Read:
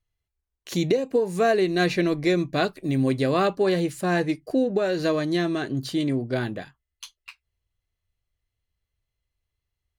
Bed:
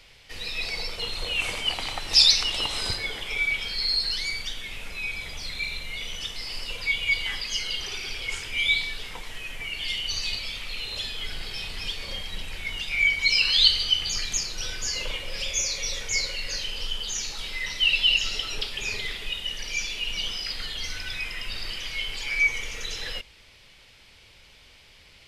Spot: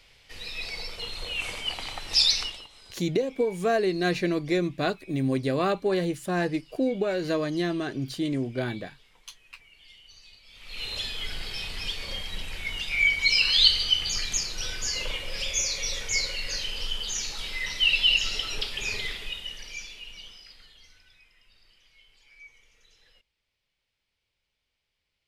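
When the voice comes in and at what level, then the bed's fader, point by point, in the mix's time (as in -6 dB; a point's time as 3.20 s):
2.25 s, -3.5 dB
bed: 2.44 s -4.5 dB
2.69 s -23 dB
10.43 s -23 dB
10.83 s -0.5 dB
19.05 s -0.5 dB
21.29 s -28 dB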